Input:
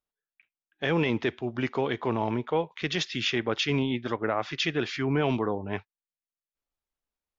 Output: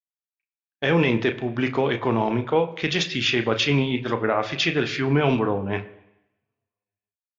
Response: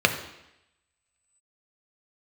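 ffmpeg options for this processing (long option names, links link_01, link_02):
-filter_complex "[0:a]agate=range=-33dB:threshold=-44dB:ratio=3:detection=peak,asplit=2[link_01][link_02];[1:a]atrim=start_sample=2205,adelay=32[link_03];[link_02][link_03]afir=irnorm=-1:irlink=0,volume=-23.5dB[link_04];[link_01][link_04]amix=inputs=2:normalize=0,volume=5dB"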